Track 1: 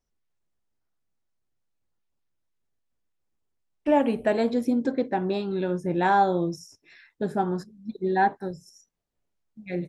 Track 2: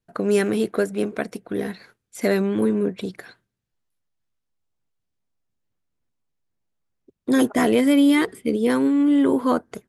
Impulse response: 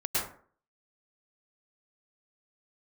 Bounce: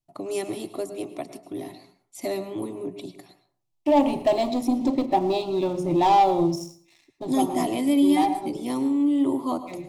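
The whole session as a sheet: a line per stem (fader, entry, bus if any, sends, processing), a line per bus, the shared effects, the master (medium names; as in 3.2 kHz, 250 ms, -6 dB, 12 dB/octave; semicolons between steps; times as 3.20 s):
-9.5 dB, 0.00 s, send -22 dB, hum notches 60/120/180/240/300/360/420/480/540 Hz; waveshaping leveller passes 2; level rider gain up to 14 dB; auto duck -7 dB, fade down 0.45 s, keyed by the second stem
-4.0 dB, 0.00 s, send -18.5 dB, none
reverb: on, RT60 0.50 s, pre-delay 97 ms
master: static phaser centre 310 Hz, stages 8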